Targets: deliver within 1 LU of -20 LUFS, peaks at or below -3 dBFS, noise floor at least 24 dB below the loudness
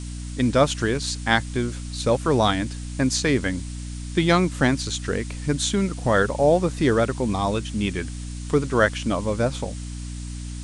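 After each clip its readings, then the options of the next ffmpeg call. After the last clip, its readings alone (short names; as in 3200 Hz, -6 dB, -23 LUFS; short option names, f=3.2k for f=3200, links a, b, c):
hum 60 Hz; harmonics up to 300 Hz; hum level -30 dBFS; noise floor -33 dBFS; noise floor target -47 dBFS; loudness -23.0 LUFS; peak -4.0 dBFS; loudness target -20.0 LUFS
-> -af "bandreject=f=60:t=h:w=6,bandreject=f=120:t=h:w=6,bandreject=f=180:t=h:w=6,bandreject=f=240:t=h:w=6,bandreject=f=300:t=h:w=6"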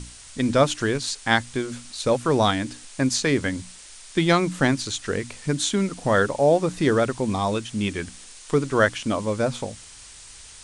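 hum none; noise floor -45 dBFS; noise floor target -48 dBFS
-> -af "afftdn=nr=6:nf=-45"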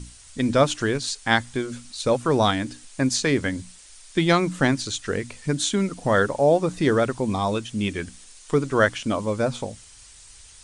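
noise floor -48 dBFS; loudness -23.5 LUFS; peak -4.0 dBFS; loudness target -20.0 LUFS
-> -af "volume=3.5dB,alimiter=limit=-3dB:level=0:latency=1"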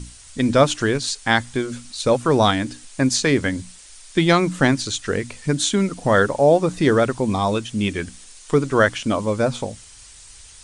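loudness -20.0 LUFS; peak -3.0 dBFS; noise floor -45 dBFS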